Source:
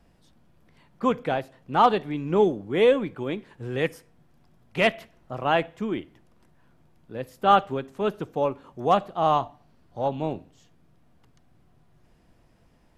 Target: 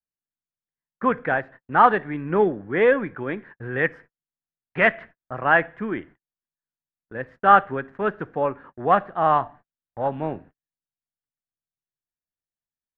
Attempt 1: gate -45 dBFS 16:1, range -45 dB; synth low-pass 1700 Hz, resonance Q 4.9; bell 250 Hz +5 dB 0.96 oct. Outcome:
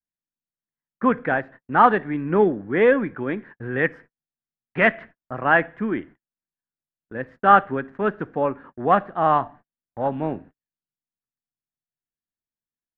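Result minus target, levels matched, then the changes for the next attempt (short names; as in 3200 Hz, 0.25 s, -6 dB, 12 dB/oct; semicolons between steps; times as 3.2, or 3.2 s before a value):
250 Hz band +3.0 dB
remove: bell 250 Hz +5 dB 0.96 oct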